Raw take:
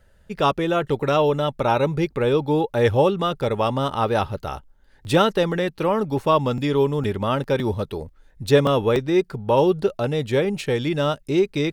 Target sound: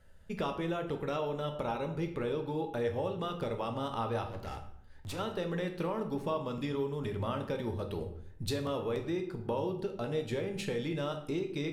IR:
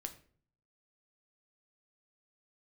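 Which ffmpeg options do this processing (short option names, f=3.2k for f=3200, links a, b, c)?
-filter_complex "[0:a]acompressor=threshold=-27dB:ratio=6,asettb=1/sr,asplit=3[a][b][c];[a]atrim=end=4.284[d];[b]atrim=start=4.28:end=5.19,asetpts=PTS-STARTPTS,afade=t=in:d=0.004:c=qsin,afade=t=out:st=0.906:d=0.004:c=qsin,asoftclip=type=hard:threshold=-33dB[e];[c]atrim=start=5.186[f];[d][e]acrossfade=d=0.004:c1=hsin:c2=qsin[g];[g][f]acrossfade=d=0.004:c1=qsin:c2=hsin[h];[1:a]atrim=start_sample=2205,asetrate=27342,aresample=44100[i];[h][i]afir=irnorm=-1:irlink=0,volume=-4.5dB"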